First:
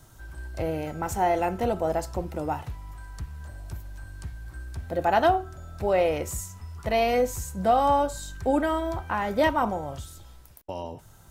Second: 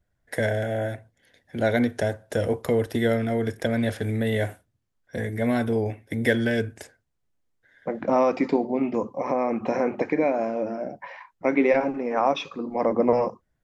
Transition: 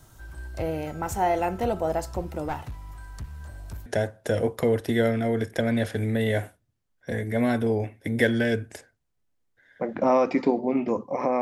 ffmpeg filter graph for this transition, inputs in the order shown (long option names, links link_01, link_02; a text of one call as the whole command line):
ffmpeg -i cue0.wav -i cue1.wav -filter_complex "[0:a]asettb=1/sr,asplit=3[link_01][link_02][link_03];[link_01]atrim=end=2.484[link_04];[link_02]atrim=start=2.48:end=3.86,asetpts=PTS-STARTPTS,afade=type=in:duration=0.004:curve=qsin,afade=type=out:start_time=1.376:duration=0.004:curve=qsin,aeval=exprs='clip(val(0),-1,0.0211)':channel_layout=same[link_05];[link_03]atrim=start=3.856[link_06];[link_04][link_05]acrossfade=duration=0.004:curve1=hsin:curve2=qsin[link_07];[link_07][link_06]acrossfade=duration=0.004:curve1=qsin:curve2=hsin,apad=whole_dur=11.41,atrim=end=11.41,atrim=end=3.862[link_08];[1:a]atrim=start=1.918:end=9.47[link_09];[link_08][link_09]acrossfade=duration=0.004:curve1=hsin:curve2=hsin" out.wav